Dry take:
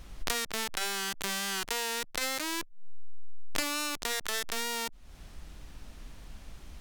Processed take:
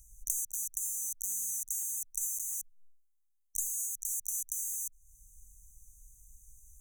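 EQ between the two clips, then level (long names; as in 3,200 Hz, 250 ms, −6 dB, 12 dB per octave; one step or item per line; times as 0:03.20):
linear-phase brick-wall band-stop 240–5,900 Hz
guitar amp tone stack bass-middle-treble 10-0-10
high-shelf EQ 2,200 Hz +11 dB
−5.5 dB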